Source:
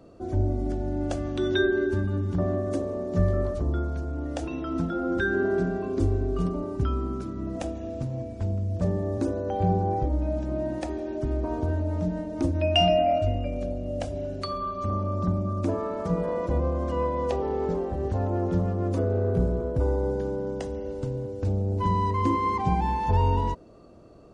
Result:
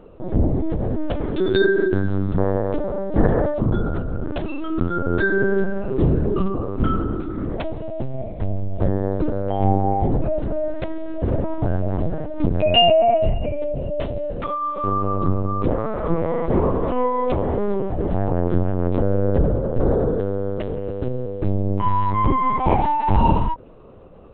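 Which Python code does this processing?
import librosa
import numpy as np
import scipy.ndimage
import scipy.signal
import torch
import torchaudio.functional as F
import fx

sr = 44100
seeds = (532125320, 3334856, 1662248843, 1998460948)

y = fx.lpc_vocoder(x, sr, seeds[0], excitation='pitch_kept', order=8)
y = y * 10.0 ** (6.5 / 20.0)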